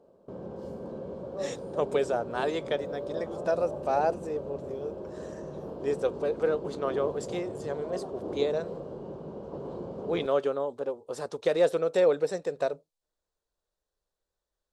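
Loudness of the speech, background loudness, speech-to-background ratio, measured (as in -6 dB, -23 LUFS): -30.5 LUFS, -38.5 LUFS, 8.0 dB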